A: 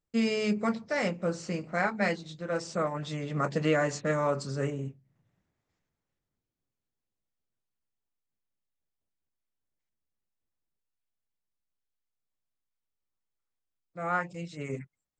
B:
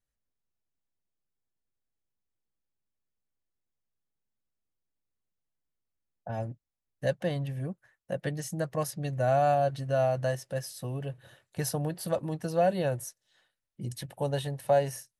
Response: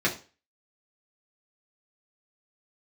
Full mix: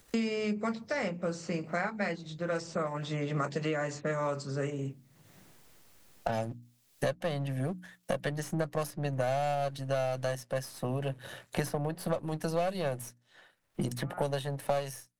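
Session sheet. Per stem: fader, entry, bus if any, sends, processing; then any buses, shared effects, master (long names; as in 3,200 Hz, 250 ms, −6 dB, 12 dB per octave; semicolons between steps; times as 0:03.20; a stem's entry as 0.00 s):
−7.0 dB, 0.00 s, no send, automatic ducking −24 dB, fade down 0.90 s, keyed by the second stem
+2.0 dB, 0.00 s, no send, gain on one half-wave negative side −7 dB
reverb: not used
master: low-shelf EQ 80 Hz −9 dB; mains-hum notches 60/120/180/240/300 Hz; multiband upward and downward compressor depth 100%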